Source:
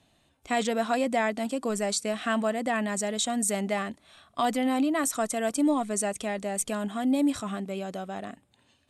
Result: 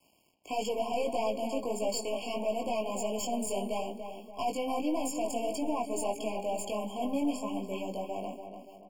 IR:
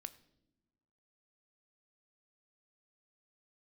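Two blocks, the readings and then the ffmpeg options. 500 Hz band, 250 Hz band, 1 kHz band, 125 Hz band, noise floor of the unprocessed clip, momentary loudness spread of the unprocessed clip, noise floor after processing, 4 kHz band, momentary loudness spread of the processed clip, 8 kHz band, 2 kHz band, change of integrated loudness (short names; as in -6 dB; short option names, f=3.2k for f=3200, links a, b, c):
-2.5 dB, -7.5 dB, -4.0 dB, n/a, -67 dBFS, 9 LU, -62 dBFS, -5.5 dB, 6 LU, -8.5 dB, -12.5 dB, -5.5 dB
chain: -filter_complex "[0:a]bandreject=f=406.9:t=h:w=4,bandreject=f=813.8:t=h:w=4,bandreject=f=1.2207k:t=h:w=4,bandreject=f=1.6276k:t=h:w=4,bandreject=f=2.0345k:t=h:w=4,bandreject=f=2.4414k:t=h:w=4,bandreject=f=2.8483k:t=h:w=4,bandreject=f=3.2552k:t=h:w=4,bandreject=f=3.6621k:t=h:w=4,bandreject=f=4.069k:t=h:w=4,bandreject=f=4.4759k:t=h:w=4,bandreject=f=4.8828k:t=h:w=4,bandreject=f=5.2897k:t=h:w=4,bandreject=f=5.6966k:t=h:w=4,bandreject=f=6.1035k:t=h:w=4,bandreject=f=6.5104k:t=h:w=4,bandreject=f=6.9173k:t=h:w=4,bandreject=f=7.3242k:t=h:w=4,bandreject=f=7.7311k:t=h:w=4,bandreject=f=8.138k:t=h:w=4,bandreject=f=8.5449k:t=h:w=4,bandreject=f=8.9518k:t=h:w=4,bandreject=f=9.3587k:t=h:w=4,bandreject=f=9.7656k:t=h:w=4,bandreject=f=10.1725k:t=h:w=4,bandreject=f=10.5794k:t=h:w=4,bandreject=f=10.9863k:t=h:w=4,bandreject=f=11.3932k:t=h:w=4,bandreject=f=11.8001k:t=h:w=4,bandreject=f=12.207k:t=h:w=4,bandreject=f=12.6139k:t=h:w=4,bandreject=f=13.0208k:t=h:w=4,acrossover=split=8700[a][b];[b]acompressor=threshold=-54dB:ratio=4:attack=1:release=60[c];[a][c]amix=inputs=2:normalize=0,highpass=200,highshelf=f=11k:g=3.5,acrossover=split=280[d][e];[d]acompressor=threshold=-48dB:ratio=2.5[f];[f][e]amix=inputs=2:normalize=0,aeval=exprs='(tanh(28.2*val(0)+0.3)-tanh(0.3))/28.2':c=same,flanger=delay=18.5:depth=3.3:speed=1.6,acrusher=bits=10:mix=0:aa=0.000001,asplit=2[g][h];[h]adelay=288,lowpass=f=2.1k:p=1,volume=-7.5dB,asplit=2[i][j];[j]adelay=288,lowpass=f=2.1k:p=1,volume=0.46,asplit=2[k][l];[l]adelay=288,lowpass=f=2.1k:p=1,volume=0.46,asplit=2[m][n];[n]adelay=288,lowpass=f=2.1k:p=1,volume=0.46,asplit=2[o][p];[p]adelay=288,lowpass=f=2.1k:p=1,volume=0.46[q];[i][k][m][o][q]amix=inputs=5:normalize=0[r];[g][r]amix=inputs=2:normalize=0,afftfilt=real='re*eq(mod(floor(b*sr/1024/1100),2),0)':imag='im*eq(mod(floor(b*sr/1024/1100),2),0)':win_size=1024:overlap=0.75,volume=4.5dB"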